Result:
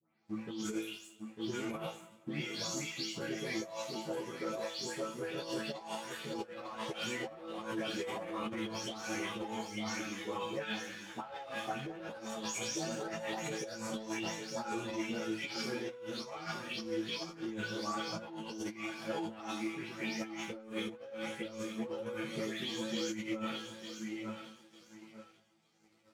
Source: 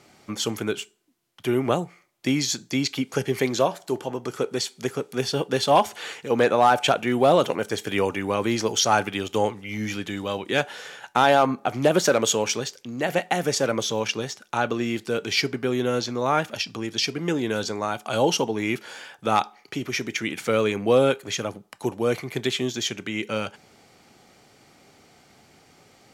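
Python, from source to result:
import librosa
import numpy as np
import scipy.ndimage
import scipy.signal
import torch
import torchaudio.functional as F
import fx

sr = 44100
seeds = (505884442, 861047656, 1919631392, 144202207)

p1 = fx.spec_delay(x, sr, highs='late', ms=256)
p2 = fx.echo_feedback(p1, sr, ms=899, feedback_pct=32, wet_db=-8.0)
p3 = 10.0 ** (-17.0 / 20.0) * (np.abs((p2 / 10.0 ** (-17.0 / 20.0) + 3.0) % 4.0 - 2.0) - 1.0)
p4 = p2 + (p3 * librosa.db_to_amplitude(-9.0))
p5 = fx.resonator_bank(p4, sr, root=45, chord='fifth', decay_s=0.54)
p6 = fx.leveller(p5, sr, passes=2)
p7 = scipy.signal.sosfilt(scipy.signal.butter(2, 98.0, 'highpass', fs=sr, output='sos'), p6)
p8 = fx.low_shelf(p7, sr, hz=130.0, db=6.5)
p9 = fx.echo_heads(p8, sr, ms=76, heads='first and third', feedback_pct=46, wet_db=-23)
p10 = fx.over_compress(p9, sr, threshold_db=-32.0, ratio=-0.5)
p11 = fx.high_shelf(p10, sr, hz=9800.0, db=-6.0)
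p12 = fx.ensemble(p11, sr)
y = p12 * librosa.db_to_amplitude(-3.5)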